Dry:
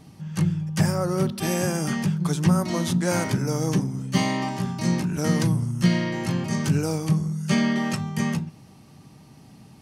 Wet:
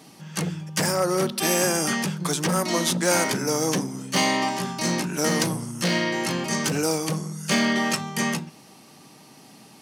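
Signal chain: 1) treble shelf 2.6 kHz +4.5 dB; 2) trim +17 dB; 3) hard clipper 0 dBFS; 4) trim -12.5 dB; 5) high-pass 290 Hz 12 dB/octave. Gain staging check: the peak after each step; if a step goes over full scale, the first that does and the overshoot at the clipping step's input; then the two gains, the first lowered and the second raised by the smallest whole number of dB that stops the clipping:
-7.5 dBFS, +9.5 dBFS, 0.0 dBFS, -12.5 dBFS, -8.0 dBFS; step 2, 9.5 dB; step 2 +7 dB, step 4 -2.5 dB

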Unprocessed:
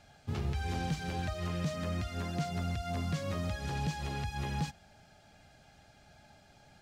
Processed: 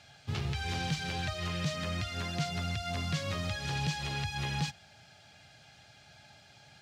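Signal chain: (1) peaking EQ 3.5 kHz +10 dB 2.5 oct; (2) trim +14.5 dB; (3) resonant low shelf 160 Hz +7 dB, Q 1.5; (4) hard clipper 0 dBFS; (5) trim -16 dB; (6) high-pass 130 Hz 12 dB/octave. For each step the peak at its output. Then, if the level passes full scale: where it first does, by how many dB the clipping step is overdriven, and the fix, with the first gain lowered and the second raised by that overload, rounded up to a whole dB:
-19.5 dBFS, -5.0 dBFS, -3.0 dBFS, -3.0 dBFS, -19.0 dBFS, -20.5 dBFS; nothing clips

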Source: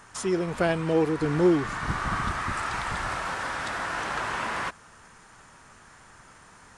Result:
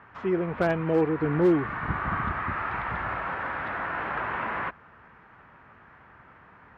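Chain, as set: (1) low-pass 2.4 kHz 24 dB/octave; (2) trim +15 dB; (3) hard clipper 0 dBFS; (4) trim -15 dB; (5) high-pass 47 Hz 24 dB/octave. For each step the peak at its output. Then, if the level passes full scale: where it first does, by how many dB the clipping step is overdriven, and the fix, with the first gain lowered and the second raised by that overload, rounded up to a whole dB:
-11.0 dBFS, +4.0 dBFS, 0.0 dBFS, -15.0 dBFS, -13.0 dBFS; step 2, 4.0 dB; step 2 +11 dB, step 4 -11 dB

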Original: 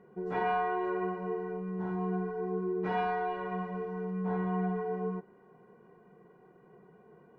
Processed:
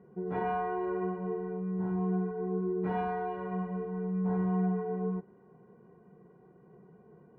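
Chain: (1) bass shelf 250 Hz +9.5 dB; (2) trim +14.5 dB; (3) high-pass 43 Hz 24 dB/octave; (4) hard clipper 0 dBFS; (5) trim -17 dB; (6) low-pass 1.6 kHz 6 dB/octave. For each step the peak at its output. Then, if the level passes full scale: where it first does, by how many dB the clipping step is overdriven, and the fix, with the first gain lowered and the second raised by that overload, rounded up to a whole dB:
-17.5 dBFS, -3.0 dBFS, -3.0 dBFS, -3.0 dBFS, -20.0 dBFS, -20.5 dBFS; nothing clips

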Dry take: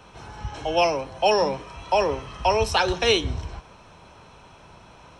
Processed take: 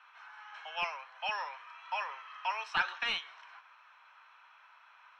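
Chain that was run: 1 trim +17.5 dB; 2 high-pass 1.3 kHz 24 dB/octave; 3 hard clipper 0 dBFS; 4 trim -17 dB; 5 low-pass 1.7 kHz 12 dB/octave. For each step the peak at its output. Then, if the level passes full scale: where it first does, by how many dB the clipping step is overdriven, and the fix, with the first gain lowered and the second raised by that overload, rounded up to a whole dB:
+10.5 dBFS, +8.0 dBFS, 0.0 dBFS, -17.0 dBFS, -18.5 dBFS; step 1, 8.0 dB; step 1 +9.5 dB, step 4 -9 dB

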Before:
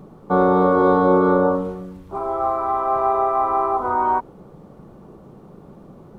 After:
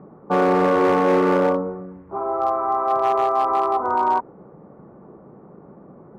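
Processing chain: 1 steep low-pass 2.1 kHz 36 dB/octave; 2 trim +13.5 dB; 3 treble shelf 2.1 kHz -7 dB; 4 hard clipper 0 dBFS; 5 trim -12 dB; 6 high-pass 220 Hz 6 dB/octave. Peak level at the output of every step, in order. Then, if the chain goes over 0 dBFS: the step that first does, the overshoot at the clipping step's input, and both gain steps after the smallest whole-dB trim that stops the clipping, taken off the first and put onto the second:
-5.0 dBFS, +8.5 dBFS, +8.0 dBFS, 0.0 dBFS, -12.0 dBFS, -8.5 dBFS; step 2, 8.0 dB; step 2 +5.5 dB, step 5 -4 dB

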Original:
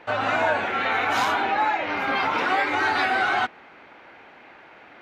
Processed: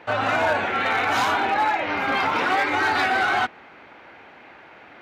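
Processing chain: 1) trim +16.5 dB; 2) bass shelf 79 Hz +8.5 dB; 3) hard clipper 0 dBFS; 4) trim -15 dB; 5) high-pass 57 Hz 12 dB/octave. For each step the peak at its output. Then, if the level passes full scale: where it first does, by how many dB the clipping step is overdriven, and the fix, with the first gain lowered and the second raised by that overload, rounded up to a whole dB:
+6.0 dBFS, +6.5 dBFS, 0.0 dBFS, -15.0 dBFS, -13.5 dBFS; step 1, 6.5 dB; step 1 +9.5 dB, step 4 -8 dB

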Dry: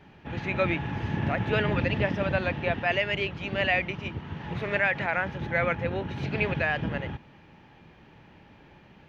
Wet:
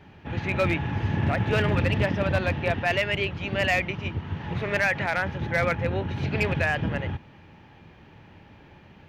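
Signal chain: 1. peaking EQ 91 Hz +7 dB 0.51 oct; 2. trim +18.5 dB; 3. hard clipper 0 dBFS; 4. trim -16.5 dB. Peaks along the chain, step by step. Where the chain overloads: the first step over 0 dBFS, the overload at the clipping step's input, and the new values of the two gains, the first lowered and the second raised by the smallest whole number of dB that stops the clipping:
-11.5 dBFS, +7.0 dBFS, 0.0 dBFS, -16.5 dBFS; step 2, 7.0 dB; step 2 +11.5 dB, step 4 -9.5 dB

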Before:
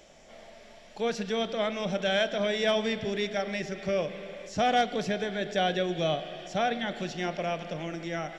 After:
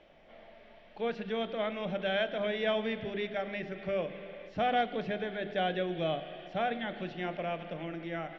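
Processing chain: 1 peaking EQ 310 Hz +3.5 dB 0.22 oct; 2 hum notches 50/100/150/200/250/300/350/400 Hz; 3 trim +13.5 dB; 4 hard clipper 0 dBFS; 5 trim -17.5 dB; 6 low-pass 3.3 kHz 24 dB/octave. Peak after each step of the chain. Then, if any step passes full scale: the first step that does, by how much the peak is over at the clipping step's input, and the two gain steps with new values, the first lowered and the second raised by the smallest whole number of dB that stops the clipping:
-15.5 dBFS, -15.5 dBFS, -2.0 dBFS, -2.0 dBFS, -19.5 dBFS, -19.0 dBFS; nothing clips

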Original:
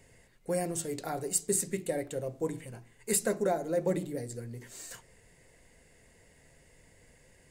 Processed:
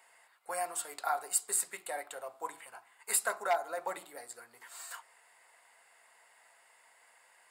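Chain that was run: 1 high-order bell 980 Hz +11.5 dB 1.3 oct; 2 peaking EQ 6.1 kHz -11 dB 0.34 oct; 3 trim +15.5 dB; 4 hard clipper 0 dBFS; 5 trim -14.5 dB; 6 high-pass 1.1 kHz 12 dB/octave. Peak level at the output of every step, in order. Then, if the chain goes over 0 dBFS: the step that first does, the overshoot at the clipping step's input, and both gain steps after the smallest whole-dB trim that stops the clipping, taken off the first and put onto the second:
-10.5 dBFS, -10.5 dBFS, +5.0 dBFS, 0.0 dBFS, -14.5 dBFS, -14.5 dBFS; step 3, 5.0 dB; step 3 +10.5 dB, step 5 -9.5 dB

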